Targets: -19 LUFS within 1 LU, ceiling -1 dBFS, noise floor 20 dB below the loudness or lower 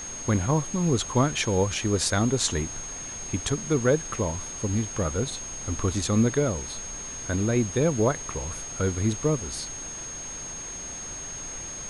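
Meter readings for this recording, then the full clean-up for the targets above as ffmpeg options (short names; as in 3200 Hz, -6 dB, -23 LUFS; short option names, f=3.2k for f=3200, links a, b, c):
steady tone 6500 Hz; tone level -35 dBFS; noise floor -37 dBFS; noise floor target -47 dBFS; loudness -27.0 LUFS; peak -10.5 dBFS; loudness target -19.0 LUFS
-> -af "bandreject=f=6.5k:w=30"
-af "afftdn=nr=10:nf=-37"
-af "volume=8dB"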